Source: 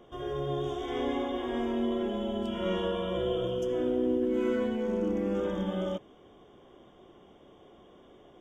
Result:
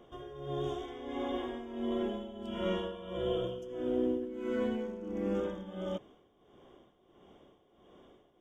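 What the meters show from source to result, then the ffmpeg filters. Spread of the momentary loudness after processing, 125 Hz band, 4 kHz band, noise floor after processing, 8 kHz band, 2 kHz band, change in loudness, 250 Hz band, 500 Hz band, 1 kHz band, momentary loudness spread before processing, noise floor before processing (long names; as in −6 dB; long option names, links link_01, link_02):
7 LU, −5.5 dB, −5.0 dB, −68 dBFS, can't be measured, −5.5 dB, −5.0 dB, −5.5 dB, −5.0 dB, −5.5 dB, 5 LU, −57 dBFS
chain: -af "tremolo=f=1.5:d=0.74,volume=-2dB"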